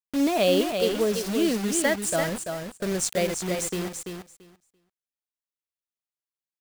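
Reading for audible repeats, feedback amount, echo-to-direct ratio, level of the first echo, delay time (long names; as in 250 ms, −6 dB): 2, 15%, −6.0 dB, −6.0 dB, 338 ms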